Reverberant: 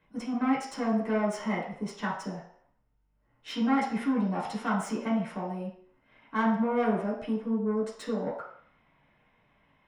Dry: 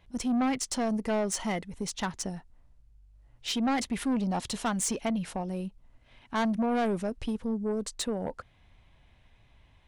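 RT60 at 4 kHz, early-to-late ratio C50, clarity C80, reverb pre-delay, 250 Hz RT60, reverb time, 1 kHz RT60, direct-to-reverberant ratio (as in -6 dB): 0.60 s, 4.5 dB, 8.0 dB, 3 ms, 0.45 s, 0.55 s, 0.60 s, -6.5 dB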